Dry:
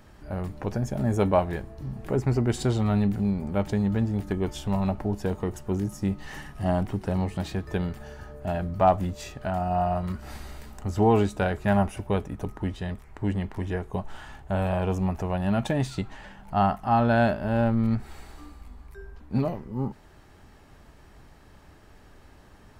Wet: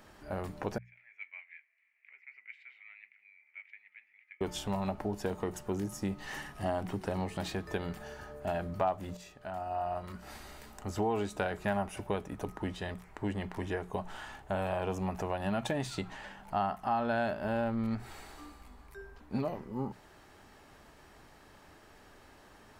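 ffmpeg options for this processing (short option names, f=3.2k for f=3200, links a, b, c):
-filter_complex "[0:a]asettb=1/sr,asplit=3[a][b][c];[a]atrim=end=0.784[d];[b]atrim=start=0.78:end=4.41,asetpts=PTS-STARTPTS,afade=t=in:d=0.004:c=qsin,afade=t=out:st=3.626:d=0.004:c=qsin,asuperpass=centerf=2200:order=4:qfactor=5.4[e];[c]atrim=start=4.406[f];[d][e]acrossfade=d=0.004:c1=hsin:c2=qsin[g];[g][f]acrossfade=d=0.004:c1=qsin:c2=hsin,asplit=2[h][i];[h]atrim=end=9.17,asetpts=PTS-STARTPTS,afade=t=out:st=9.166:d=0.004:c=hsin:silence=0.223872[j];[i]atrim=start=9.17,asetpts=PTS-STARTPTS,afade=t=in:d=2.12:silence=0.223872[k];[j][k]concat=n=2:v=0:a=1,lowshelf=f=200:g=-11,bandreject=f=60:t=h:w=6,bandreject=f=120:t=h:w=6,bandreject=f=180:t=h:w=6,acompressor=threshold=-30dB:ratio=3"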